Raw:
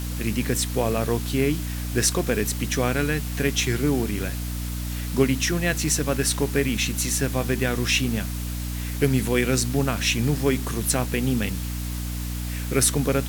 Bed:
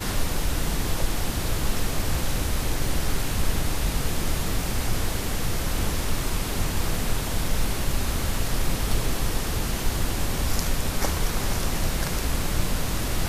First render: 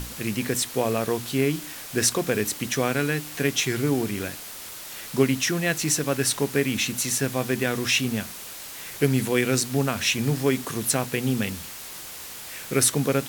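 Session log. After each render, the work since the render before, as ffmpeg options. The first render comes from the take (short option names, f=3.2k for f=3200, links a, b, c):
-af "bandreject=f=60:t=h:w=6,bandreject=f=120:t=h:w=6,bandreject=f=180:t=h:w=6,bandreject=f=240:t=h:w=6,bandreject=f=300:t=h:w=6"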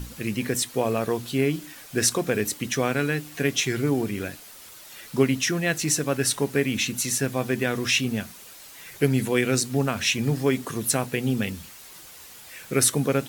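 -af "afftdn=nr=8:nf=-39"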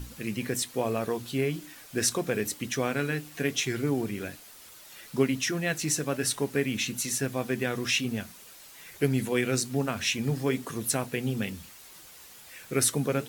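-af "flanger=delay=2.5:depth=3.6:regen=-81:speed=1.1:shape=triangular"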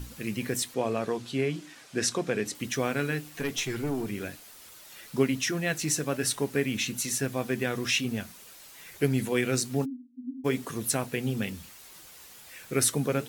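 -filter_complex "[0:a]asettb=1/sr,asplit=3[a][b][c];[a]atrim=end=0.744[d];[b]atrim=start=0.74:end=2.55,asetpts=PTS-STARTPTS,afade=t=in:d=0.004:c=qsin,afade=t=out:st=1.806:d=0.004:c=qsin,highpass=110,lowpass=7.7k[e];[c]atrim=start=2.546[f];[d][e]acrossfade=d=0.004:c1=hsin:c2=qsin[g];[g][f]acrossfade=d=0.004:c1=qsin:c2=hsin,asettb=1/sr,asplit=3[h][i][j];[h]atrim=end=3.314[k];[i]atrim=start=3.31:end=4.08,asetpts=PTS-STARTPTS,afade=t=in:d=0.004:c=qsin,afade=t=out:st=0.766:d=0.004:c=qsin,aeval=exprs='(tanh(12.6*val(0)+0.25)-tanh(0.25))/12.6':c=same[l];[j]atrim=start=4.076[m];[k][l]acrossfade=d=0.004:c1=hsin:c2=qsin[n];[n][m]acrossfade=d=0.004:c1=qsin:c2=hsin,asplit=3[o][p][q];[o]afade=t=out:st=9.84:d=0.02[r];[p]asuperpass=centerf=260:order=12:qfactor=6,afade=t=in:st=9.84:d=0.02,afade=t=out:st=10.44:d=0.02[s];[q]afade=t=in:st=10.44:d=0.02[t];[r][s][t]amix=inputs=3:normalize=0"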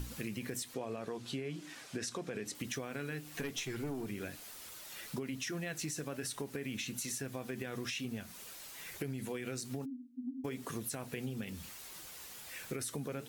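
-af "alimiter=limit=-20.5dB:level=0:latency=1:release=48,acompressor=threshold=-37dB:ratio=6"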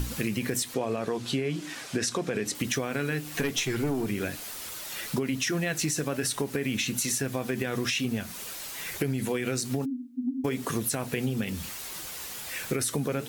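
-af "volume=11dB"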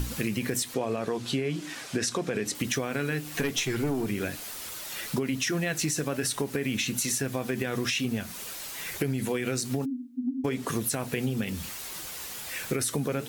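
-filter_complex "[0:a]asettb=1/sr,asplit=3[a][b][c];[a]atrim=end=10.194[d];[b]atrim=start=10.19:end=10.68,asetpts=PTS-STARTPTS,afade=t=in:d=0.004:c=qsin,afade=t=out:st=0.486:d=0.004:c=qsin,highshelf=f=11k:g=-9.5[e];[c]atrim=start=10.676[f];[d][e]acrossfade=d=0.004:c1=hsin:c2=qsin[g];[g][f]acrossfade=d=0.004:c1=qsin:c2=hsin"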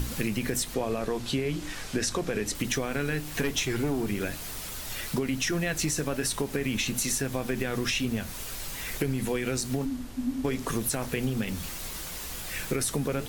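-filter_complex "[1:a]volume=-18dB[a];[0:a][a]amix=inputs=2:normalize=0"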